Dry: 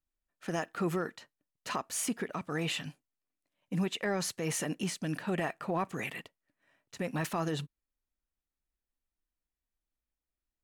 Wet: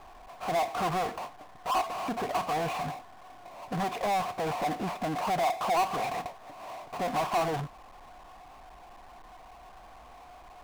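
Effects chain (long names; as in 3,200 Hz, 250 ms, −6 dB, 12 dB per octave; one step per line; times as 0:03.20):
formant resonators in series a
power curve on the samples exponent 0.35
level +8.5 dB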